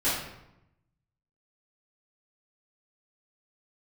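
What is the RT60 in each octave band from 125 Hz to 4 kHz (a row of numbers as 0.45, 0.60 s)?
1.3, 1.1, 0.90, 0.85, 0.75, 0.60 s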